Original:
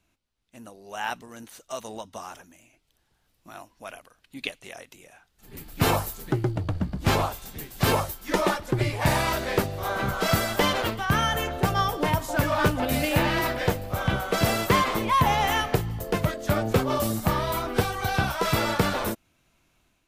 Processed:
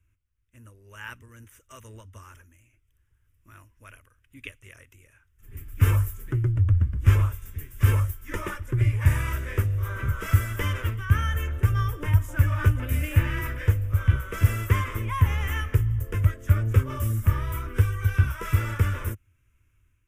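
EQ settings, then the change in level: resonant low shelf 130 Hz +9.5 dB, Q 3; fixed phaser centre 1800 Hz, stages 4; -4.5 dB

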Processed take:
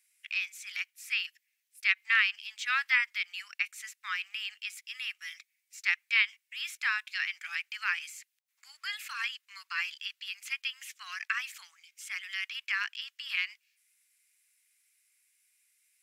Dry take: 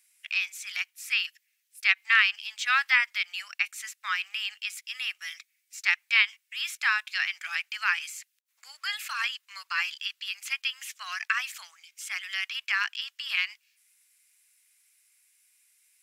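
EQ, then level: HPF 940 Hz 12 dB/oct; bell 2100 Hz +3 dB 0.67 oct; -6.0 dB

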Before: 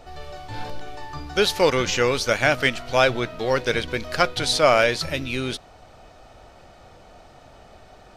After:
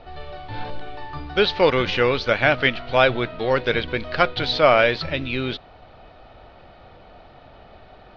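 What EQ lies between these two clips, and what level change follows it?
steep low-pass 4200 Hz 36 dB/oct; +1.5 dB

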